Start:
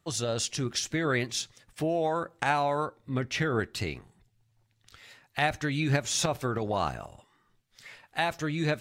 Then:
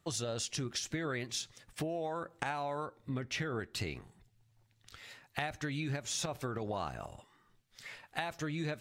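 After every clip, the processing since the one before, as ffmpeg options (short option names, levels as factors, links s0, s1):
-af "acompressor=threshold=0.02:ratio=6"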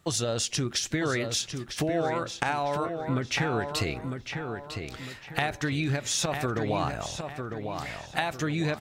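-filter_complex "[0:a]asplit=2[s0][s1];[s1]adelay=952,lowpass=f=3700:p=1,volume=0.501,asplit=2[s2][s3];[s3]adelay=952,lowpass=f=3700:p=1,volume=0.39,asplit=2[s4][s5];[s5]adelay=952,lowpass=f=3700:p=1,volume=0.39,asplit=2[s6][s7];[s7]adelay=952,lowpass=f=3700:p=1,volume=0.39,asplit=2[s8][s9];[s9]adelay=952,lowpass=f=3700:p=1,volume=0.39[s10];[s0][s2][s4][s6][s8][s10]amix=inputs=6:normalize=0,volume=2.66"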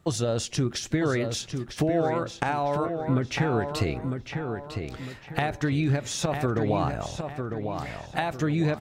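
-af "tiltshelf=f=1200:g=4.5"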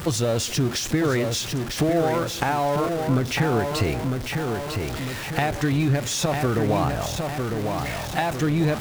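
-af "aeval=exprs='val(0)+0.5*0.0355*sgn(val(0))':c=same,volume=1.19"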